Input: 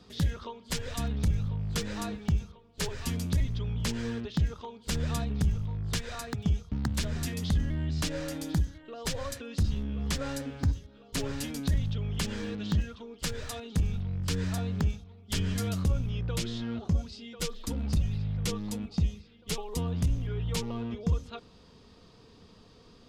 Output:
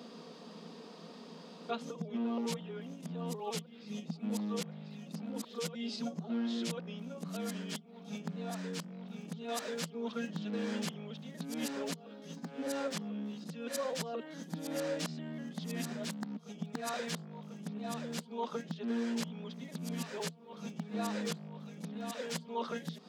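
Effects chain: reverse the whole clip; compression 12:1, threshold -38 dBFS, peak gain reduction 16.5 dB; rippled Chebyshev high-pass 160 Hz, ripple 6 dB; trim +10 dB

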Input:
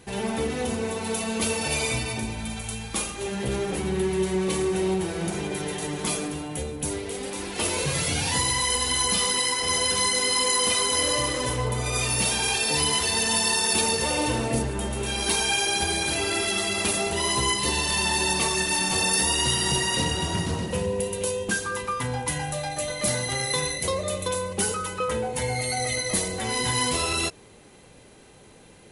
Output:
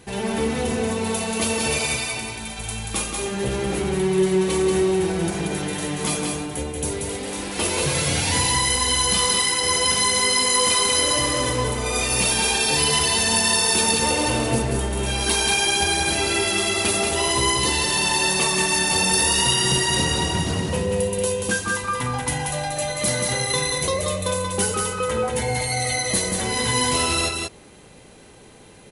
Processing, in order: 1.78–2.59 s: bass shelf 420 Hz -10 dB; delay 183 ms -4 dB; trim +2.5 dB

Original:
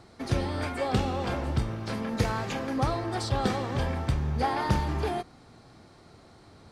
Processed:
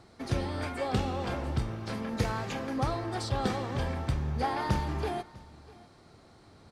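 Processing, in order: delay 650 ms -22 dB; trim -3 dB

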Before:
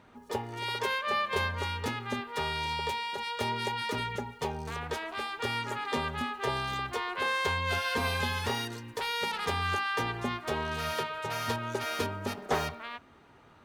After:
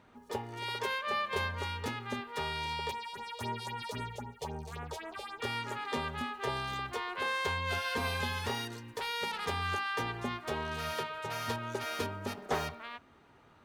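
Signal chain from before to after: 2.91–5.42 s: phase shifter stages 4, 3.8 Hz, lowest notch 230–4700 Hz; trim -3.5 dB

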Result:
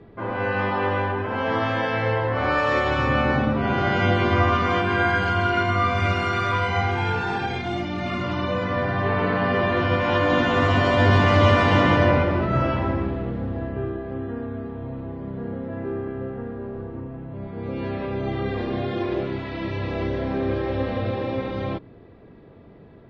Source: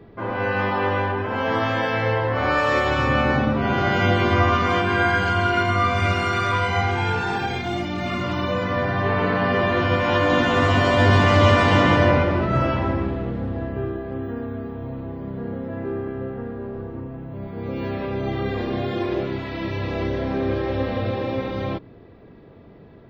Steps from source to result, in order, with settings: distance through air 66 m; trim -1 dB

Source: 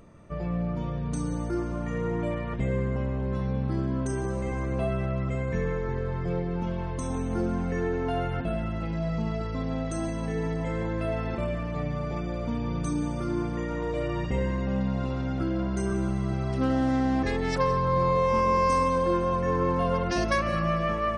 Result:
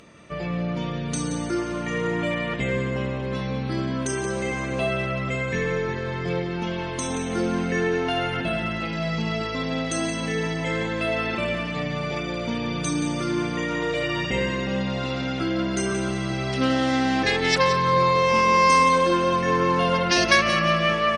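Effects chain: frequency weighting D; feedback delay 177 ms, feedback 39%, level -11 dB; trim +4.5 dB; WMA 128 kbps 44.1 kHz

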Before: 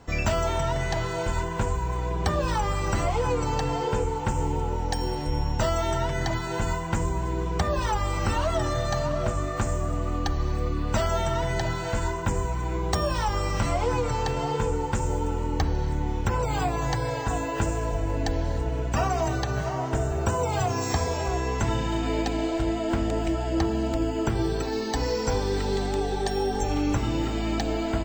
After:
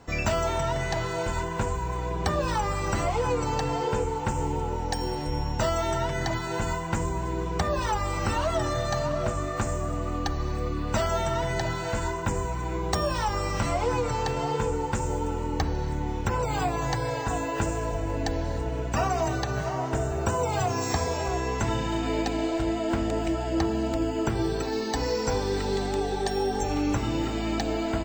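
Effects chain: bass shelf 85 Hz -5.5 dB; band-stop 3.2 kHz, Q 30

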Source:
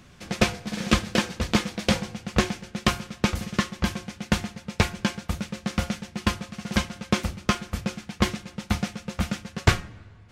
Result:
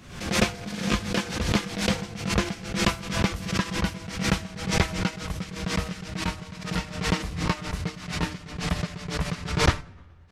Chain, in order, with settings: pitch bend over the whole clip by -3.5 st starting unshifted; added noise brown -66 dBFS; swell ahead of each attack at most 77 dB/s; trim -2 dB

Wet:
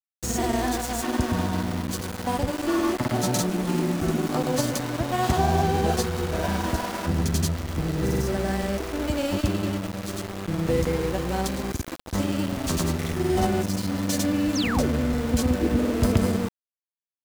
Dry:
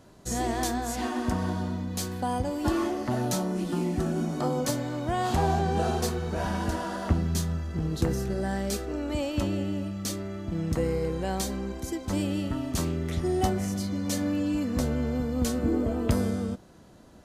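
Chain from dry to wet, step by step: granulator 100 ms, grains 20 per s, pitch spread up and down by 0 st; small samples zeroed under -34 dBFS; painted sound fall, 14.55–14.90 s, 250–6900 Hz -35 dBFS; trim +5 dB

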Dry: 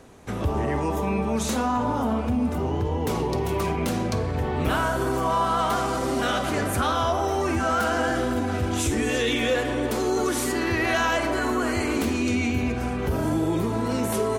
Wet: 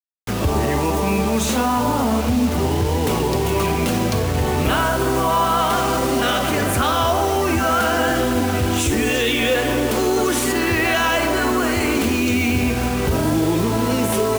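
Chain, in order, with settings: peaking EQ 2.8 kHz +4.5 dB 0.47 oct; peak limiter -17 dBFS, peak gain reduction 4 dB; bit crusher 6-bit; trim +6.5 dB

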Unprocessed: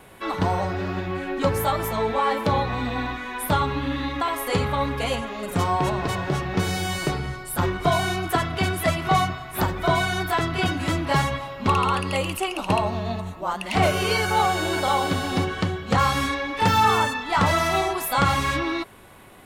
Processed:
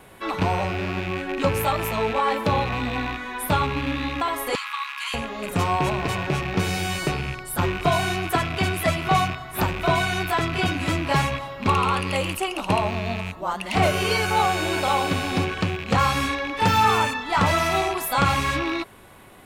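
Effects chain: rattle on loud lows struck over -34 dBFS, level -21 dBFS; 4.55–5.14 s: Chebyshev high-pass 970 Hz, order 6

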